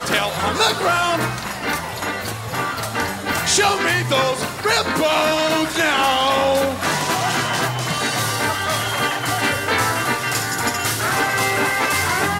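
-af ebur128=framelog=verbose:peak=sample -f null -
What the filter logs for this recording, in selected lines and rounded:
Integrated loudness:
  I:         -18.8 LUFS
  Threshold: -28.8 LUFS
Loudness range:
  LRA:         2.7 LU
  Threshold: -38.8 LUFS
  LRA low:   -20.2 LUFS
  LRA high:  -17.5 LUFS
Sample peak:
  Peak:       -4.6 dBFS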